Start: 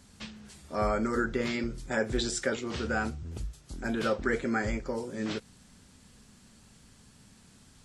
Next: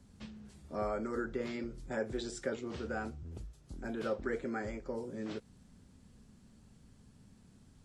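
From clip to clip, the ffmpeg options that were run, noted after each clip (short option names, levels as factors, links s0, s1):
-filter_complex "[0:a]tiltshelf=f=770:g=6,acrossover=split=330|1400[s0][s1][s2];[s0]acompressor=threshold=0.0158:ratio=6[s3];[s3][s1][s2]amix=inputs=3:normalize=0,volume=0.447"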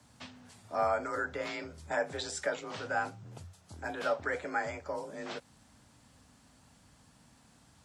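-af "afreqshift=37,lowshelf=f=530:t=q:w=1.5:g=-10,volume=2.24"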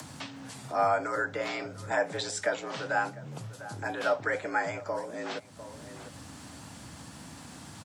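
-filter_complex "[0:a]afreqshift=23,asplit=2[s0][s1];[s1]adelay=699.7,volume=0.112,highshelf=f=4000:g=-15.7[s2];[s0][s2]amix=inputs=2:normalize=0,acompressor=mode=upward:threshold=0.0126:ratio=2.5,volume=1.58"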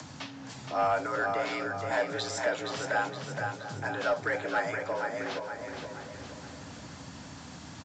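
-af "aecho=1:1:470|940|1410|1880|2350|2820:0.501|0.236|0.111|0.052|0.0245|0.0115,asoftclip=type=tanh:threshold=0.126" -ar 16000 -c:a pcm_mulaw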